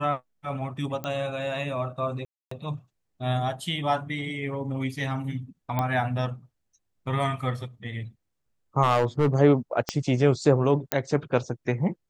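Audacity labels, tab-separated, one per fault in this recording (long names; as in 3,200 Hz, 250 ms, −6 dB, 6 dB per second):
1.040000	1.040000	click −18 dBFS
2.250000	2.510000	drop-out 264 ms
5.790000	5.790000	click −13 dBFS
8.820000	9.350000	clipping −16 dBFS
9.890000	9.890000	click −11 dBFS
10.920000	10.920000	click −6 dBFS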